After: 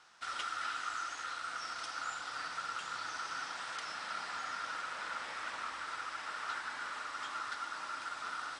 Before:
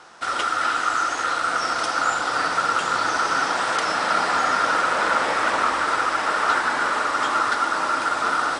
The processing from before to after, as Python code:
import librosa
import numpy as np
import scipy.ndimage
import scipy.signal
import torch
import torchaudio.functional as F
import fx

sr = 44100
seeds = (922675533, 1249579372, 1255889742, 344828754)

y = fx.high_shelf(x, sr, hz=8800.0, db=-11.5)
y = fx.rider(y, sr, range_db=10, speed_s=2.0)
y = fx.tone_stack(y, sr, knobs='5-5-5')
y = y * librosa.db_to_amplitude(-6.5)